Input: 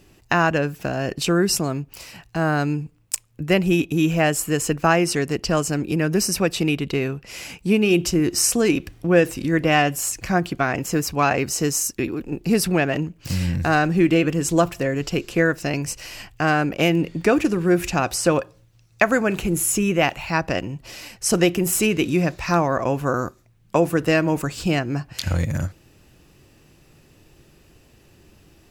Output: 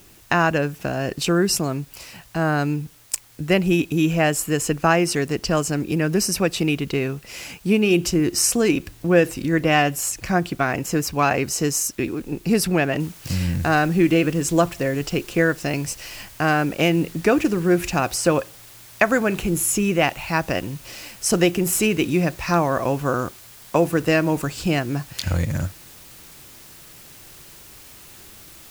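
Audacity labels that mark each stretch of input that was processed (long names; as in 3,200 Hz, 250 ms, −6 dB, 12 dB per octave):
13.000000	13.000000	noise floor change −52 dB −45 dB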